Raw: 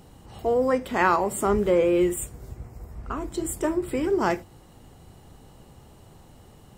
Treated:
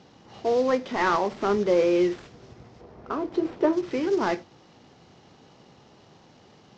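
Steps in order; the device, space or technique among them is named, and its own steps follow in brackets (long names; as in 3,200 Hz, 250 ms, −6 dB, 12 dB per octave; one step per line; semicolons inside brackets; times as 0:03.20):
early wireless headset (high-pass filter 170 Hz 12 dB per octave; variable-slope delta modulation 32 kbit/s)
0:02.81–0:03.73: drawn EQ curve 210 Hz 0 dB, 430 Hz +7 dB, 12,000 Hz −12 dB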